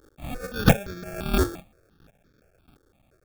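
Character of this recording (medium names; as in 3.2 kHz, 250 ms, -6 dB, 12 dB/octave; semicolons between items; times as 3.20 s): a quantiser's noise floor 10-bit, dither triangular; chopped level 1.5 Hz, depth 60%, duty 15%; aliases and images of a low sample rate 1 kHz, jitter 0%; notches that jump at a steady rate 5.8 Hz 680–2800 Hz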